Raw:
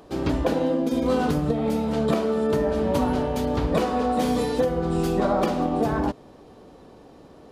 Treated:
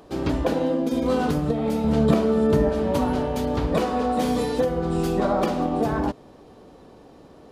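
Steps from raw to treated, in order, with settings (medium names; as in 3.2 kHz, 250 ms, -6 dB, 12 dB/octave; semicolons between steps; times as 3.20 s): 1.84–2.69 s: bass shelf 240 Hz +9.5 dB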